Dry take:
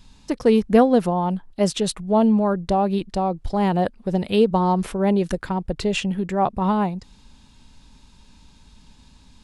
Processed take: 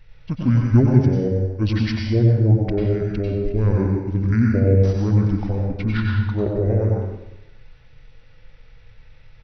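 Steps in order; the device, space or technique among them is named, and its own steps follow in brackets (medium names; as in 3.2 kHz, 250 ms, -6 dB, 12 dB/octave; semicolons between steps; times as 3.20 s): monster voice (pitch shift -11 st; bass shelf 120 Hz +8 dB; delay 92 ms -10.5 dB; reverberation RT60 0.95 s, pre-delay 88 ms, DRR -0.5 dB); trim -4 dB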